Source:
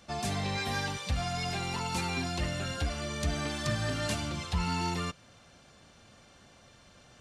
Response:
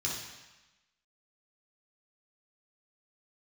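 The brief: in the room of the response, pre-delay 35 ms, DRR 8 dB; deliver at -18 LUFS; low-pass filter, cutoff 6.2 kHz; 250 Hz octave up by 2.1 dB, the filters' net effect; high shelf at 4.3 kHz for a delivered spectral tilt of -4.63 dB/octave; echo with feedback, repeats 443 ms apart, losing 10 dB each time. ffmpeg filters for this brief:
-filter_complex "[0:a]lowpass=6200,equalizer=f=250:t=o:g=3,highshelf=f=4300:g=-3.5,aecho=1:1:443|886|1329|1772:0.316|0.101|0.0324|0.0104,asplit=2[s0][s1];[1:a]atrim=start_sample=2205,adelay=35[s2];[s1][s2]afir=irnorm=-1:irlink=0,volume=0.237[s3];[s0][s3]amix=inputs=2:normalize=0,volume=4.73"

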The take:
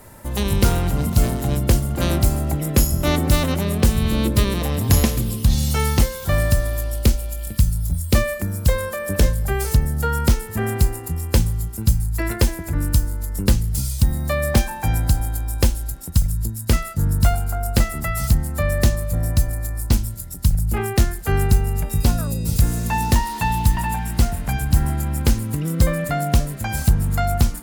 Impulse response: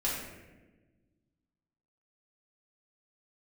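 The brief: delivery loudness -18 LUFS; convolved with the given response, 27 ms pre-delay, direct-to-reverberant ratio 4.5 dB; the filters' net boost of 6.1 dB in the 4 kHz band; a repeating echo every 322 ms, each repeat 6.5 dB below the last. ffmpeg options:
-filter_complex "[0:a]equalizer=f=4000:t=o:g=7.5,aecho=1:1:322|644|966|1288|1610|1932:0.473|0.222|0.105|0.0491|0.0231|0.0109,asplit=2[s0][s1];[1:a]atrim=start_sample=2205,adelay=27[s2];[s1][s2]afir=irnorm=-1:irlink=0,volume=0.282[s3];[s0][s3]amix=inputs=2:normalize=0,volume=0.944"

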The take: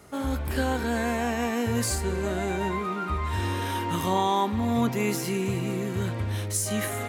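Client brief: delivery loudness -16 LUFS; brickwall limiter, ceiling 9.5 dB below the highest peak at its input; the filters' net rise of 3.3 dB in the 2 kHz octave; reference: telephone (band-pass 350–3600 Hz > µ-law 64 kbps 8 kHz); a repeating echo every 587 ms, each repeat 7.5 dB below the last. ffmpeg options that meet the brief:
-af "equalizer=f=2000:t=o:g=4.5,alimiter=limit=0.0944:level=0:latency=1,highpass=350,lowpass=3600,aecho=1:1:587|1174|1761|2348|2935:0.422|0.177|0.0744|0.0312|0.0131,volume=6.31" -ar 8000 -c:a pcm_mulaw

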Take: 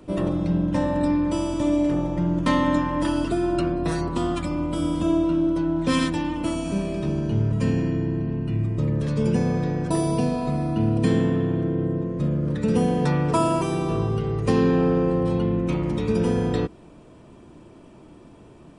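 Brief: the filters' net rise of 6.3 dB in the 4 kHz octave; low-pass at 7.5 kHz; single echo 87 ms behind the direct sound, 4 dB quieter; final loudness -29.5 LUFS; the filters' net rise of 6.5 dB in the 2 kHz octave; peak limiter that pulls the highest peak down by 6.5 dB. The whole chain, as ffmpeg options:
-af "lowpass=7500,equalizer=f=2000:t=o:g=6.5,equalizer=f=4000:t=o:g=6,alimiter=limit=0.2:level=0:latency=1,aecho=1:1:87:0.631,volume=0.473"

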